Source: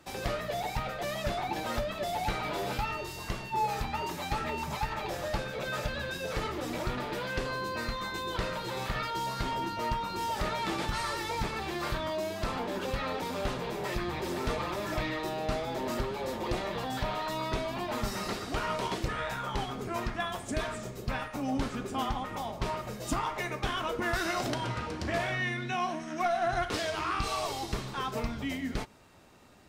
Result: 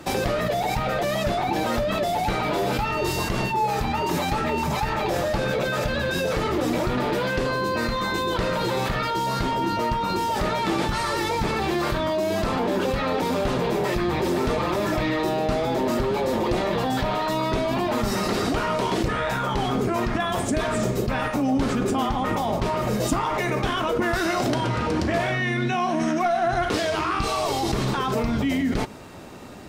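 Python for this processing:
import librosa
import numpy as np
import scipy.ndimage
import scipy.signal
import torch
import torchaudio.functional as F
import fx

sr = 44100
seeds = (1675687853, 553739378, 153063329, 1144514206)

p1 = fx.over_compress(x, sr, threshold_db=-40.0, ratio=-1.0)
p2 = x + F.gain(torch.from_numpy(p1), 2.0).numpy()
p3 = fx.peak_eq(p2, sr, hz=280.0, db=5.5, octaves=2.9)
y = F.gain(torch.from_numpy(p3), 2.5).numpy()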